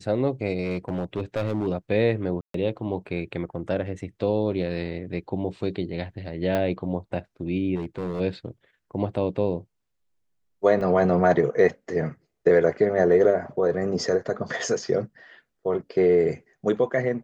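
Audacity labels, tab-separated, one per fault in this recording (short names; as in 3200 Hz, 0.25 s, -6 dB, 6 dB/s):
0.640000	1.680000	clipped -21 dBFS
2.410000	2.540000	gap 0.133 s
6.550000	6.550000	pop -13 dBFS
7.750000	8.210000	clipped -25 dBFS
10.810000	10.810000	gap 3.3 ms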